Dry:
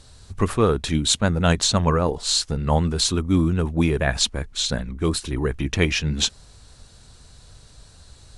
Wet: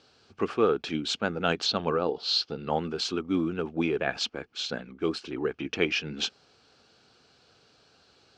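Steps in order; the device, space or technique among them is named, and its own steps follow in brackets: phone earpiece (speaker cabinet 360–4400 Hz, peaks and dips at 600 Hz -7 dB, 1000 Hz -10 dB, 1900 Hz -10 dB, 3800 Hz -10 dB); 1.66–2.7 graphic EQ 2000/4000/8000 Hz -5/+9/-10 dB

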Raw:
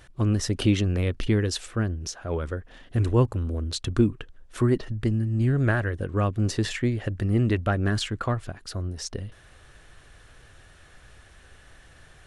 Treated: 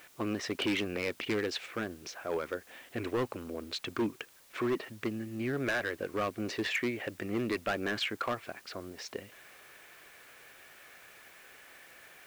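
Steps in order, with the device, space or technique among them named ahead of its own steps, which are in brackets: drive-through speaker (BPF 350–3600 Hz; bell 2300 Hz +9 dB 0.36 oct; hard clip -25 dBFS, distortion -9 dB; white noise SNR 24 dB); gain -1 dB

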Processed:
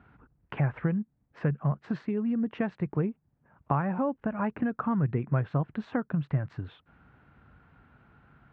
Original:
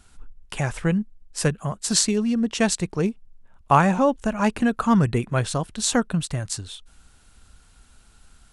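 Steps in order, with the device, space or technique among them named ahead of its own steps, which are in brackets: bass amplifier (compressor 4:1, threshold -30 dBFS, peak gain reduction 16 dB; speaker cabinet 65–2000 Hz, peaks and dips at 68 Hz -8 dB, 140 Hz +8 dB, 290 Hz +3 dB); gain +1.5 dB

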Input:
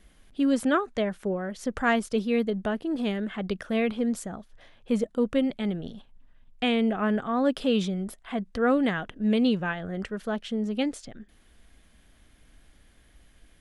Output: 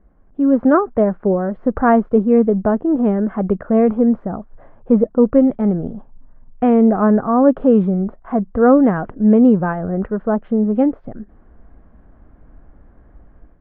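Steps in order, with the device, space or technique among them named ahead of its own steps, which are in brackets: action camera in a waterproof case (LPF 1200 Hz 24 dB/oct; AGC gain up to 9 dB; gain +3.5 dB; AAC 48 kbps 24000 Hz)

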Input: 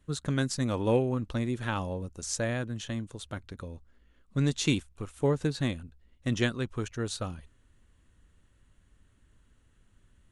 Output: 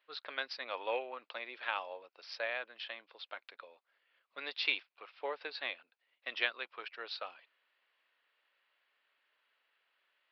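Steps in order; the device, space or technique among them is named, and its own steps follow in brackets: musical greeting card (downsampling 11025 Hz; HPF 590 Hz 24 dB/oct; bell 2400 Hz +7.5 dB 0.59 oct); gain -3.5 dB

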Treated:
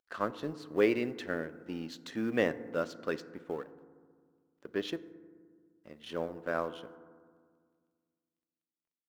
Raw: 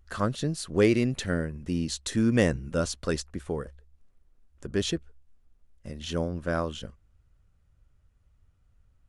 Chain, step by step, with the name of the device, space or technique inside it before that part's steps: phone line with mismatched companding (BPF 310–3200 Hz; G.711 law mismatch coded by A); 3.65–4.88 bell 8900 Hz -6.5 dB 1 oct; FDN reverb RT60 1.8 s, low-frequency decay 1.35×, high-frequency decay 0.3×, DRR 13.5 dB; gain -2.5 dB

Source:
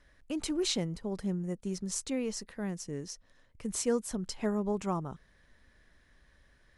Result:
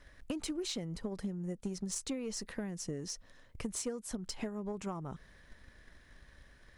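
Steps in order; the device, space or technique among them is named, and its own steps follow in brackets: drum-bus smash (transient shaper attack +8 dB, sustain +2 dB; compressor 10:1, threshold -37 dBFS, peak gain reduction 18.5 dB; soft clip -31 dBFS, distortion -19 dB); gain +3.5 dB

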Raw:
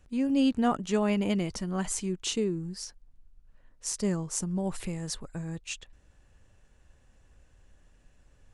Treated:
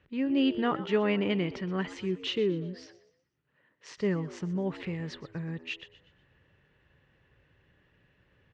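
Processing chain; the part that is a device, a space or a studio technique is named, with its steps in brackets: 2.85–3.98 HPF 150 Hz 12 dB/oct; frequency-shifting delay pedal into a guitar cabinet (frequency-shifting echo 0.122 s, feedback 41%, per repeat +83 Hz, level -16 dB; speaker cabinet 100–3800 Hz, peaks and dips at 140 Hz +3 dB, 230 Hz -5 dB, 400 Hz +4 dB, 710 Hz -6 dB, 1900 Hz +7 dB, 2900 Hz +3 dB)

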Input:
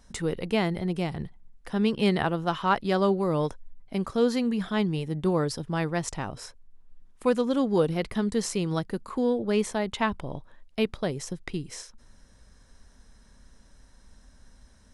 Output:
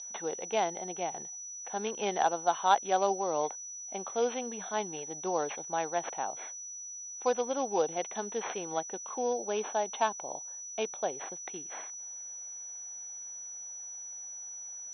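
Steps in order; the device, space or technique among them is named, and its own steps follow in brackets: toy sound module (decimation joined by straight lines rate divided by 6×; pulse-width modulation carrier 5900 Hz; speaker cabinet 600–4900 Hz, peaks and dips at 770 Hz +8 dB, 1200 Hz -7 dB, 1900 Hz -7 dB, 3500 Hz +9 dB); 9.49–11.12 notch 2000 Hz, Q 9.8

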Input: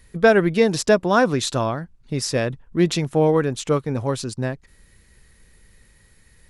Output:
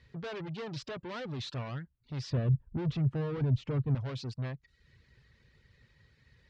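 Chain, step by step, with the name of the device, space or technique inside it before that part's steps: guitar amplifier (tube stage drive 31 dB, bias 0.25; tone controls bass +5 dB, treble +4 dB; speaker cabinet 79–4400 Hz, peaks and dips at 130 Hz +5 dB, 190 Hz -8 dB, 310 Hz -4 dB, 770 Hz -4 dB); reverb removal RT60 0.56 s; 2.3–3.95 tilt -3.5 dB/oct; gain -6 dB

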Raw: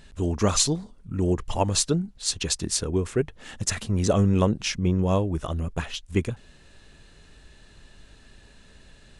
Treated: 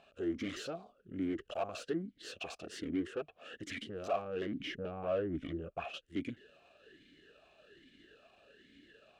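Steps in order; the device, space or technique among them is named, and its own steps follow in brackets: talk box (tube stage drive 31 dB, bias 0.6; vowel sweep a-i 1.2 Hz); 4.58–5.85 tone controls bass +6 dB, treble -9 dB; gain +9.5 dB

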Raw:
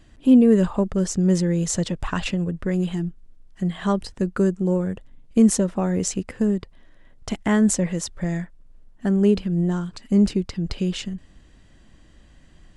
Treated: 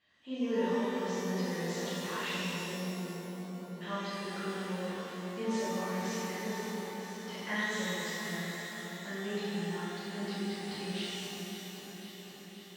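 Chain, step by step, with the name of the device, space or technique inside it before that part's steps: regenerating reverse delay 0.262 s, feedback 83%, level -10 dB; kitchen radio (speaker cabinet 170–4000 Hz, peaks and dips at 310 Hz -8 dB, 460 Hz +4 dB, 1000 Hz +5 dB, 1900 Hz +7 dB); pre-emphasis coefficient 0.9; 2.33–3.81 steep low-pass 860 Hz 36 dB/oct; shimmer reverb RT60 2.5 s, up +12 st, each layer -8 dB, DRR -11.5 dB; gain -8 dB

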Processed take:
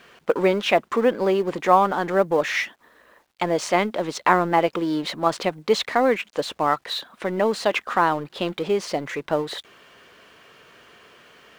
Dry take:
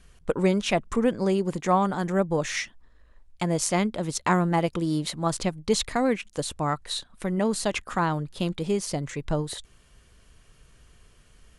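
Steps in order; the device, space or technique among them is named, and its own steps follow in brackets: phone line with mismatched companding (BPF 370–3200 Hz; G.711 law mismatch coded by mu); gain +6.5 dB

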